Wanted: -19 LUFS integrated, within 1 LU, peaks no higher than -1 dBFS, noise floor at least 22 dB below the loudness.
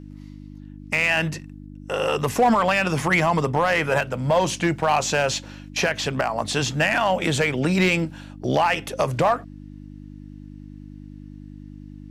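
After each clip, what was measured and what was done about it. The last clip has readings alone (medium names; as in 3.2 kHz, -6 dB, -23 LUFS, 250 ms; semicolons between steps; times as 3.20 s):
clipped samples 0.5%; clipping level -11.5 dBFS; hum 50 Hz; highest harmonic 300 Hz; hum level -38 dBFS; loudness -22.0 LUFS; peak level -11.5 dBFS; loudness target -19.0 LUFS
-> clip repair -11.5 dBFS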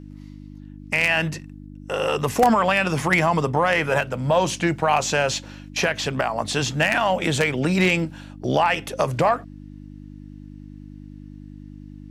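clipped samples 0.0%; hum 50 Hz; highest harmonic 300 Hz; hum level -38 dBFS
-> de-hum 50 Hz, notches 6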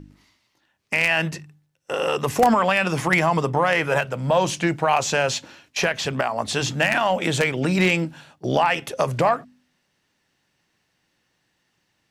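hum not found; loudness -21.5 LUFS; peak level -2.5 dBFS; loudness target -19.0 LUFS
-> trim +2.5 dB; peak limiter -1 dBFS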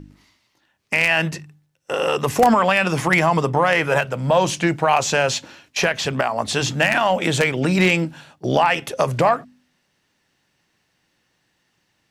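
loudness -19.0 LUFS; peak level -1.0 dBFS; noise floor -69 dBFS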